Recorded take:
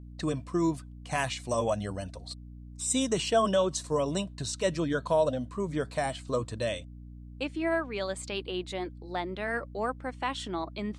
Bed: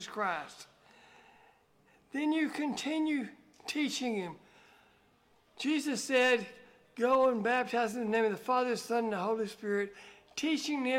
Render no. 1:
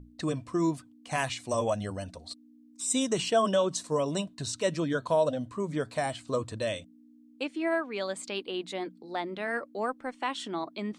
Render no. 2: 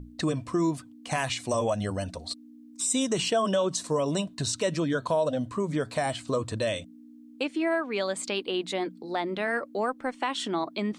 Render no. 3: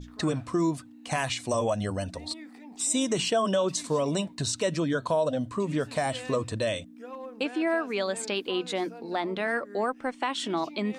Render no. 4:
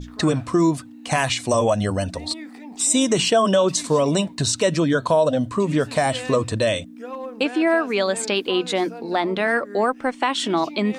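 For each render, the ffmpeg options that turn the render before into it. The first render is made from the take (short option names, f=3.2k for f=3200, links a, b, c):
-af "bandreject=f=60:t=h:w=6,bandreject=f=120:t=h:w=6,bandreject=f=180:t=h:w=6"
-filter_complex "[0:a]asplit=2[a][b];[b]alimiter=limit=-23.5dB:level=0:latency=1:release=70,volume=2dB[c];[a][c]amix=inputs=2:normalize=0,acompressor=threshold=-29dB:ratio=1.5"
-filter_complex "[1:a]volume=-14.5dB[a];[0:a][a]amix=inputs=2:normalize=0"
-af "volume=8dB"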